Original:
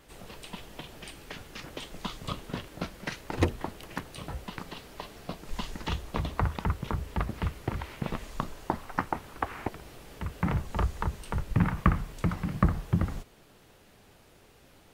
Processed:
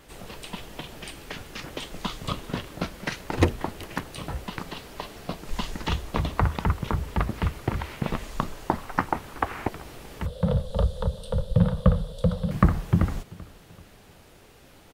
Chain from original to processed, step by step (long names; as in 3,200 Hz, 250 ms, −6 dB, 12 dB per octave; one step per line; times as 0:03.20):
0:10.26–0:12.51: drawn EQ curve 200 Hz 0 dB, 330 Hz −26 dB, 510 Hz +14 dB, 760 Hz −8 dB, 1,500 Hz −11 dB, 2,300 Hz −22 dB, 3,500 Hz +6 dB, 6,400 Hz −11 dB, 9,800 Hz −2 dB, 15,000 Hz −15 dB
repeating echo 386 ms, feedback 42%, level −23 dB
level +5 dB